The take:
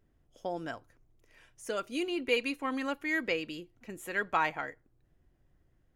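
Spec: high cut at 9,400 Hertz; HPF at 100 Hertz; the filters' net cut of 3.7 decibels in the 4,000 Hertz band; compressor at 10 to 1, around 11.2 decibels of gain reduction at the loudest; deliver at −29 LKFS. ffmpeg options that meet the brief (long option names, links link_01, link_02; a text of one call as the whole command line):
ffmpeg -i in.wav -af "highpass=100,lowpass=9400,equalizer=frequency=4000:width_type=o:gain=-6,acompressor=threshold=-35dB:ratio=10,volume=12dB" out.wav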